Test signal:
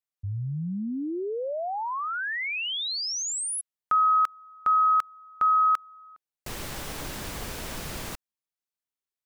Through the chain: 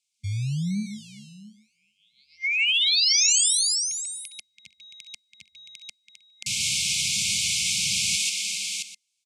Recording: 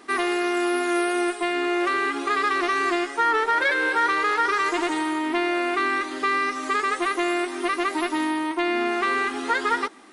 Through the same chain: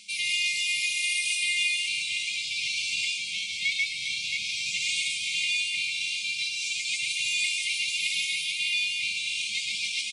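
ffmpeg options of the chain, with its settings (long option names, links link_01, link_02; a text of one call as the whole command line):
ffmpeg -i in.wav -filter_complex "[0:a]tiltshelf=frequency=820:gain=-6,acrossover=split=240[link_01][link_02];[link_01]acrusher=samples=30:mix=1:aa=0.000001:lfo=1:lforange=18:lforate=0.93[link_03];[link_02]aecho=1:1:66|138|142|401|672|794:0.211|0.596|0.596|0.335|0.531|0.133[link_04];[link_03][link_04]amix=inputs=2:normalize=0,acontrast=84,highpass=frequency=85:width=0.5412,highpass=frequency=85:width=1.3066,areverse,acompressor=threshold=-23dB:ratio=6:attack=37:release=504:knee=1:detection=rms,areverse,afftfilt=real='re*(1-between(b*sr/4096,220,2100))':imag='im*(1-between(b*sr/4096,220,2100))':win_size=4096:overlap=0.75,lowpass=frequency=8300:width=0.5412,lowpass=frequency=8300:width=1.3066,highshelf=frequency=5000:gain=6,volume=2.5dB" out.wav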